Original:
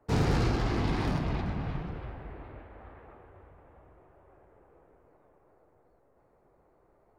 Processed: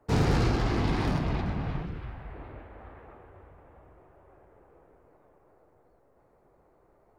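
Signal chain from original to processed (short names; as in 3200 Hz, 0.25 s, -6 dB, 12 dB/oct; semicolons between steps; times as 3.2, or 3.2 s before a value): 1.84–2.34 bell 890 Hz -> 270 Hz -8.5 dB 1.2 oct; gain +2 dB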